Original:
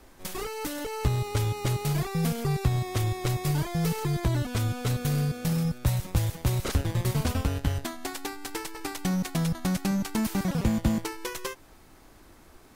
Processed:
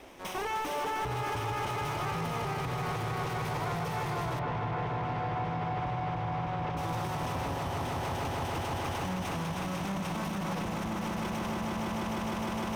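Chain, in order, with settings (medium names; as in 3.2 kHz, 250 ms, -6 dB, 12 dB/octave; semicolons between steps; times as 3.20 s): comb filter that takes the minimum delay 0.35 ms; echo with a slow build-up 153 ms, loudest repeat 5, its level -7.5 dB; compression, threshold -27 dBFS, peak gain reduction 10.5 dB; de-hum 73.36 Hz, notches 7; overdrive pedal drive 24 dB, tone 1.7 kHz, clips at -17 dBFS; peak limiter -23 dBFS, peak gain reduction 4.5 dB; dynamic bell 960 Hz, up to +7 dB, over -48 dBFS, Q 1.4; 4.39–6.77 s: low-pass 2.6 kHz 12 dB/octave; peaking EQ 71 Hz +3.5 dB 1.9 oct; trim -6 dB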